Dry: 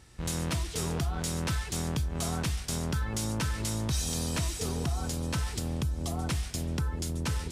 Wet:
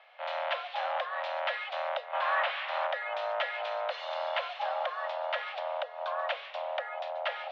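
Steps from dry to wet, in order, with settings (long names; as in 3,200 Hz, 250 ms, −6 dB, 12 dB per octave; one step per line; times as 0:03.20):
0:02.13–0:02.87: mid-hump overdrive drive 23 dB, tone 1,300 Hz, clips at −20.5 dBFS
single-sideband voice off tune +380 Hz 220–3,000 Hz
level +4.5 dB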